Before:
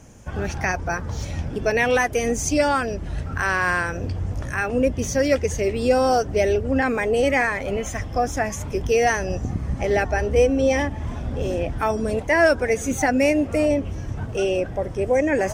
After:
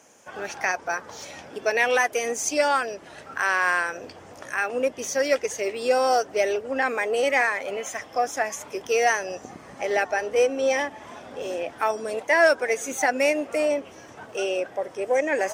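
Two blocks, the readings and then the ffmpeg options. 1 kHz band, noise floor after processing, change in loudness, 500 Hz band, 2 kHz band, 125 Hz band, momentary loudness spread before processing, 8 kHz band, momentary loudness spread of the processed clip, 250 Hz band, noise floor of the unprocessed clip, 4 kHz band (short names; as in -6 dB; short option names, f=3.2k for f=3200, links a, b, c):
-1.0 dB, -46 dBFS, -2.0 dB, -3.0 dB, -0.5 dB, under -25 dB, 9 LU, -0.5 dB, 15 LU, -10.5 dB, -32 dBFS, 0.0 dB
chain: -af "aeval=exprs='0.501*(cos(1*acos(clip(val(0)/0.501,-1,1)))-cos(1*PI/2))+0.00794*(cos(7*acos(clip(val(0)/0.501,-1,1)))-cos(7*PI/2))':c=same,highpass=490"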